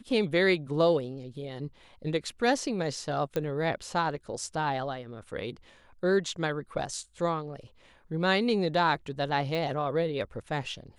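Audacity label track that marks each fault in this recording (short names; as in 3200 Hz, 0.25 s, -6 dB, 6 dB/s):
3.360000	3.360000	pop -17 dBFS
9.550000	9.550000	pop -21 dBFS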